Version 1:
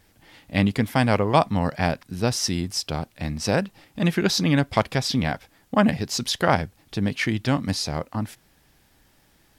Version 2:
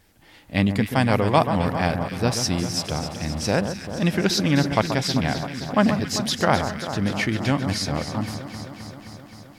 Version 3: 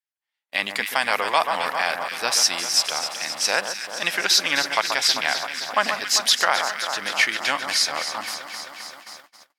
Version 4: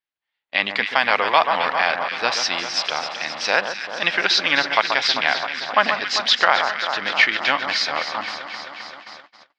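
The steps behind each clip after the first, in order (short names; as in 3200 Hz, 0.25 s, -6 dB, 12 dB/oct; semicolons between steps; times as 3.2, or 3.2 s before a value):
echo with dull and thin repeats by turns 0.131 s, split 1600 Hz, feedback 85%, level -8.5 dB
gate -40 dBFS, range -41 dB; HPF 1100 Hz 12 dB/oct; maximiser +12.5 dB; gain -4.5 dB
LPF 4300 Hz 24 dB/oct; gain +4 dB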